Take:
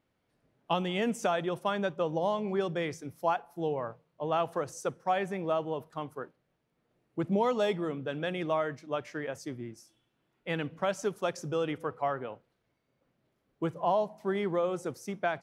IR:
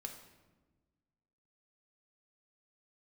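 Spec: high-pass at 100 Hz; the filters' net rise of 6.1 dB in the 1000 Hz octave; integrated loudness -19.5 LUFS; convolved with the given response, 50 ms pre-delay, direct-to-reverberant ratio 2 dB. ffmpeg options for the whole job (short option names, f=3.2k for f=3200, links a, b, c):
-filter_complex "[0:a]highpass=100,equalizer=f=1k:t=o:g=8,asplit=2[a][b];[1:a]atrim=start_sample=2205,adelay=50[c];[b][c]afir=irnorm=-1:irlink=0,volume=1dB[d];[a][d]amix=inputs=2:normalize=0,volume=8dB"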